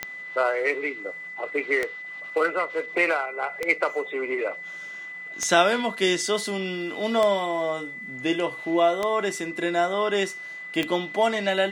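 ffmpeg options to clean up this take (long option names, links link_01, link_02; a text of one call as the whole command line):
ffmpeg -i in.wav -af "adeclick=threshold=4,bandreject=frequency=2000:width=30" out.wav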